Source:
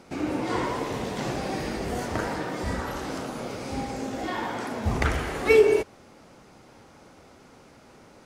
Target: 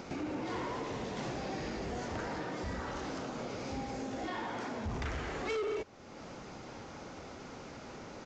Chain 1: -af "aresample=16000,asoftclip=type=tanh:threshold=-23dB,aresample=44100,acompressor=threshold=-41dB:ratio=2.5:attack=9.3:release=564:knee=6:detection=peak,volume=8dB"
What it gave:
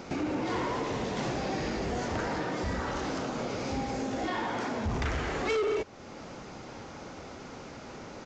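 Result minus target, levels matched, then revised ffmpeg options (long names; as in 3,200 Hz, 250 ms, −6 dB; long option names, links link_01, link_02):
downward compressor: peak gain reduction −6.5 dB
-af "aresample=16000,asoftclip=type=tanh:threshold=-23dB,aresample=44100,acompressor=threshold=-51.5dB:ratio=2.5:attack=9.3:release=564:knee=6:detection=peak,volume=8dB"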